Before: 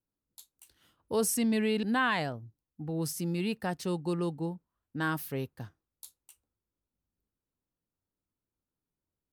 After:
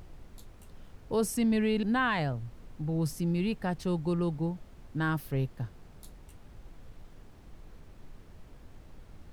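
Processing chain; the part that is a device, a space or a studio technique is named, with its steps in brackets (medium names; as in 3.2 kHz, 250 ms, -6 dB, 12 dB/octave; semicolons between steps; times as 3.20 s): car interior (peaking EQ 130 Hz +8.5 dB 0.73 oct; treble shelf 4.9 kHz -8 dB; brown noise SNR 14 dB)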